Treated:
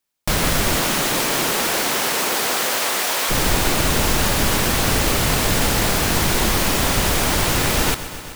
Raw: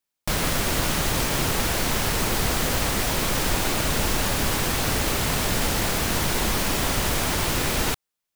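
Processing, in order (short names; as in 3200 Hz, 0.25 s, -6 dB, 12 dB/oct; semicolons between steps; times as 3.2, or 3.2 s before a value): 0.76–3.29 HPF 180 Hz -> 590 Hz 12 dB/oct; lo-fi delay 0.127 s, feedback 80%, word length 8-bit, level -14.5 dB; gain +5 dB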